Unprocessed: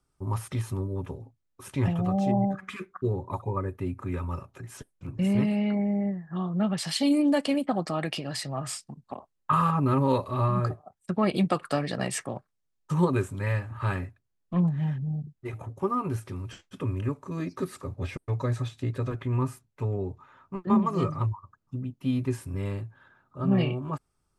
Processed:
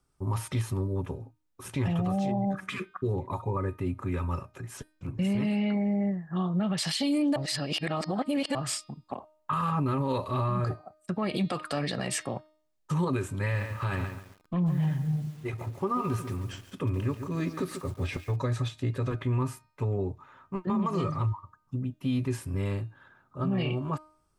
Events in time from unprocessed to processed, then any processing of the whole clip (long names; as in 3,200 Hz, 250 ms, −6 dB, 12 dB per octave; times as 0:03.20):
0:01.16–0:01.82: delay throw 480 ms, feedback 40%, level −11 dB
0:07.36–0:08.55: reverse
0:13.38–0:18.36: feedback echo at a low word length 140 ms, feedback 35%, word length 8 bits, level −10.5 dB
whole clip: dynamic equaliser 3,500 Hz, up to +4 dB, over −47 dBFS, Q 0.73; hum removal 308.8 Hz, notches 17; brickwall limiter −22 dBFS; level +1.5 dB